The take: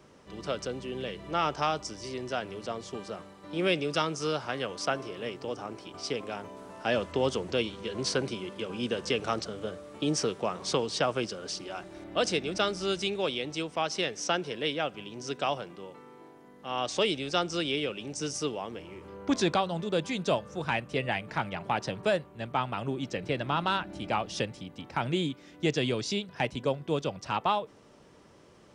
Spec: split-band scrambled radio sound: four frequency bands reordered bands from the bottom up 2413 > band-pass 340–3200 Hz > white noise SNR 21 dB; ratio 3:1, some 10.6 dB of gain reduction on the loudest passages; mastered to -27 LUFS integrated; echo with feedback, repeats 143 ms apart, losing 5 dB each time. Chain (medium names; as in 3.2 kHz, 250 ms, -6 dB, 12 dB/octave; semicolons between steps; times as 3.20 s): compression 3:1, threshold -37 dBFS; feedback delay 143 ms, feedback 56%, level -5 dB; four frequency bands reordered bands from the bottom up 2413; band-pass 340–3200 Hz; white noise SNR 21 dB; trim +12 dB